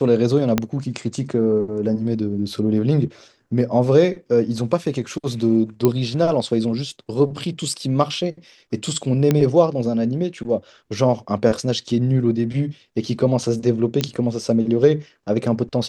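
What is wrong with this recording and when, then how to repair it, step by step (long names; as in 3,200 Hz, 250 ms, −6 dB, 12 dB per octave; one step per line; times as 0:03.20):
0:00.58: click −4 dBFS
0:05.85: click −5 dBFS
0:09.31: click −5 dBFS
0:14.01: click −8 dBFS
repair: click removal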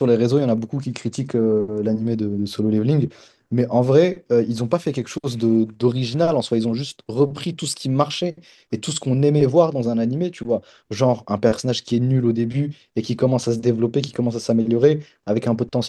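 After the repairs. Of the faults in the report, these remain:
0:00.58: click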